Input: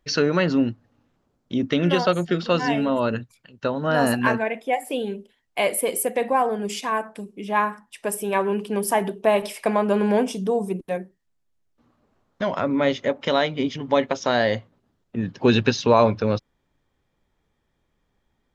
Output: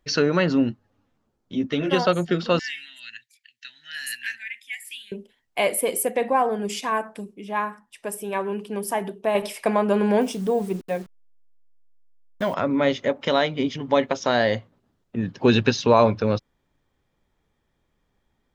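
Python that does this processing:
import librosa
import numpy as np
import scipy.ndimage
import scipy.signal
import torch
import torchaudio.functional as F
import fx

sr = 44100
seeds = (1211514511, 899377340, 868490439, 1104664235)

y = fx.ensemble(x, sr, at=(0.7, 1.91), fade=0.02)
y = fx.ellip_highpass(y, sr, hz=1800.0, order=4, stop_db=40, at=(2.59, 5.12))
y = fx.high_shelf(y, sr, hz=8400.0, db=-6.5, at=(6.11, 6.52))
y = fx.delta_hold(y, sr, step_db=-43.0, at=(10.21, 12.54))
y = fx.edit(y, sr, fx.clip_gain(start_s=7.34, length_s=2.01, db=-4.5), tone=tone)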